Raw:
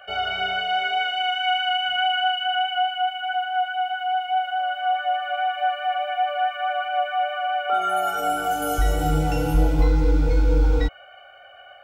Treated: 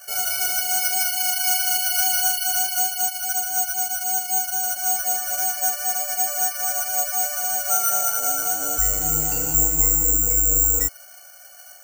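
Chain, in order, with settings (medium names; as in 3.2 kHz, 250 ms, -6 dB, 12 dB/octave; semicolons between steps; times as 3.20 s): peaking EQ 1.8 kHz +6.5 dB 1.5 oct; careless resampling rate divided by 6×, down filtered, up zero stuff; trim -9.5 dB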